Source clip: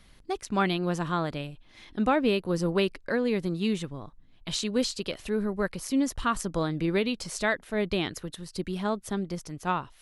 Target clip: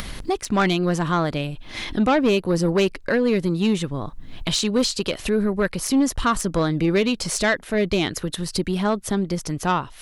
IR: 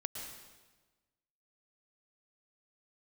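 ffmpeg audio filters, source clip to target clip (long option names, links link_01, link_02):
-af "acompressor=mode=upward:threshold=-27dB:ratio=2.5,aeval=exprs='0.282*(cos(1*acos(clip(val(0)/0.282,-1,1)))-cos(1*PI/2))+0.0562*(cos(5*acos(clip(val(0)/0.282,-1,1)))-cos(5*PI/2))':channel_layout=same,volume=2.5dB"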